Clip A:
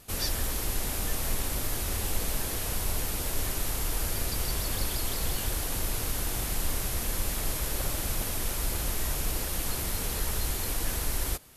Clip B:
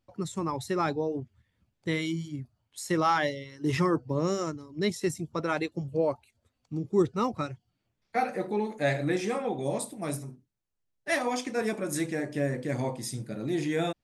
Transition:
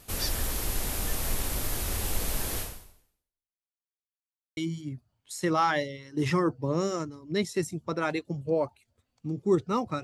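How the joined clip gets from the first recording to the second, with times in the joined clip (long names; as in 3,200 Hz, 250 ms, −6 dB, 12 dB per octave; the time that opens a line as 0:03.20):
clip A
0:02.60–0:03.72: fade out exponential
0:03.72–0:04.57: silence
0:04.57: continue with clip B from 0:02.04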